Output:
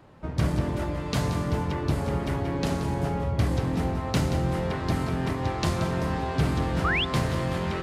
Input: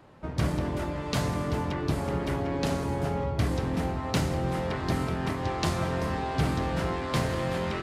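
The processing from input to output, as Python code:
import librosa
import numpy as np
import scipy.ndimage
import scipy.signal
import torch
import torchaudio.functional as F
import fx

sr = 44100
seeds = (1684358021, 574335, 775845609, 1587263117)

p1 = x + fx.echo_single(x, sr, ms=179, db=-10.5, dry=0)
p2 = fx.spec_paint(p1, sr, seeds[0], shape='rise', start_s=6.84, length_s=0.21, low_hz=1100.0, high_hz=3700.0, level_db=-26.0)
y = fx.low_shelf(p2, sr, hz=180.0, db=4.0)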